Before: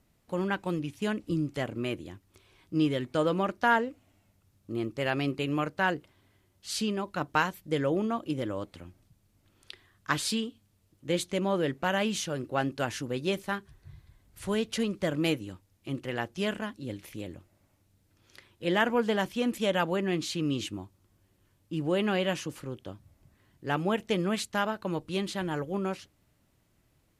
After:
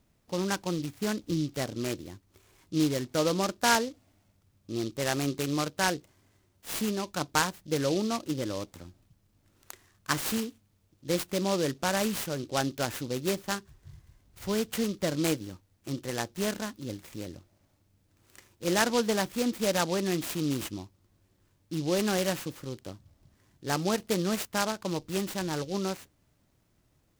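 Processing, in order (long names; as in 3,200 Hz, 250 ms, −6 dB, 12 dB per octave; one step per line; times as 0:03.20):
short delay modulated by noise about 4,200 Hz, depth 0.077 ms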